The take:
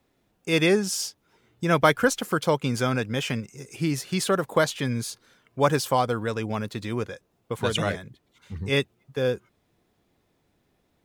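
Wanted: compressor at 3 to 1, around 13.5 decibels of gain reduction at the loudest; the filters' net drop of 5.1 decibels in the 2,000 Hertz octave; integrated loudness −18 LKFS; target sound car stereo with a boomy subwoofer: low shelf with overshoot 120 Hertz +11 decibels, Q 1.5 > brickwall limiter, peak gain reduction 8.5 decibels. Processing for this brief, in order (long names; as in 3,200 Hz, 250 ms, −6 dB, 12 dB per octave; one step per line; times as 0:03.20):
parametric band 2,000 Hz −7 dB
downward compressor 3 to 1, threshold −34 dBFS
low shelf with overshoot 120 Hz +11 dB, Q 1.5
level +20 dB
brickwall limiter −7 dBFS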